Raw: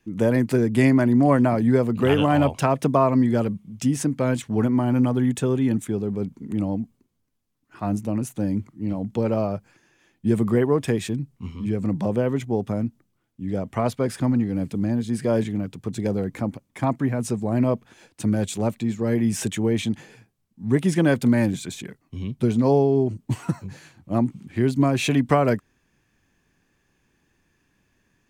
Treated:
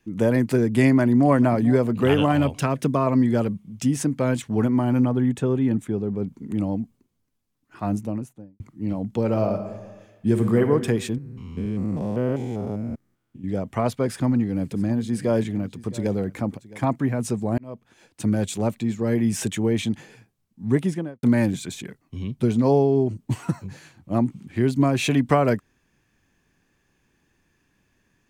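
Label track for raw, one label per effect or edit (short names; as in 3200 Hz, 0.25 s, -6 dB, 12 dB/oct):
0.870000	1.310000	echo throw 0.44 s, feedback 45%, level -17 dB
2.320000	3.070000	bell 770 Hz -7.5 dB 1 oct
5.040000	6.270000	high shelf 3100 Hz -10 dB
7.870000	8.600000	studio fade out
9.240000	10.660000	reverb throw, RT60 1.3 s, DRR 5.5 dB
11.180000	13.440000	stepped spectrum every 0.2 s
14.050000	16.860000	echo 0.665 s -19 dB
17.580000	18.250000	fade in
20.690000	21.230000	studio fade out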